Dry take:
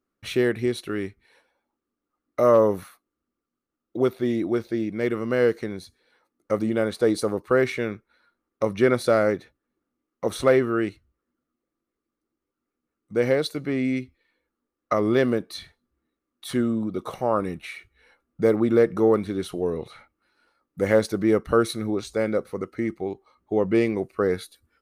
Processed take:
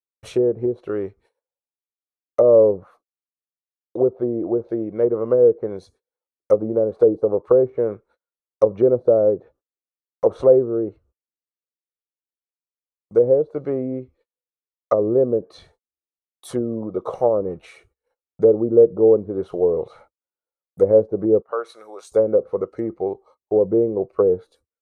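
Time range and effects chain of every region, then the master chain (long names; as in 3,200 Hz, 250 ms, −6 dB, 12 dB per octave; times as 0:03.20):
0:21.42–0:22.12: high-pass filter 1,100 Hz + parametric band 5,600 Hz −4.5 dB 2.3 octaves
whole clip: noise gate −54 dBFS, range −33 dB; treble cut that deepens with the level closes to 460 Hz, closed at −19 dBFS; octave-band graphic EQ 250/500/1,000/2,000/4,000/8,000 Hz −6/+12/+4/−10/−6/+4 dB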